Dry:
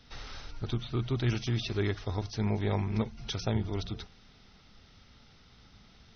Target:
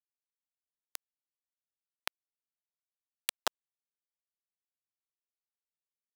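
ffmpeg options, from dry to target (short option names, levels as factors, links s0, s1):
-af "acompressor=threshold=0.0112:ratio=6,acrusher=bits=4:mix=0:aa=0.000001,highpass=710,volume=5.31"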